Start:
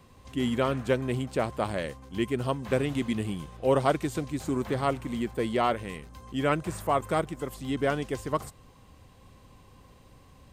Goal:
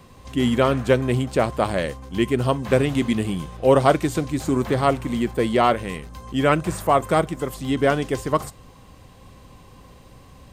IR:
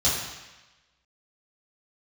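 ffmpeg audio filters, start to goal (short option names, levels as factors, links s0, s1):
-filter_complex "[0:a]asplit=2[s0][s1];[1:a]atrim=start_sample=2205,atrim=end_sample=3087[s2];[s1][s2]afir=irnorm=-1:irlink=0,volume=0.0282[s3];[s0][s3]amix=inputs=2:normalize=0,volume=2.37"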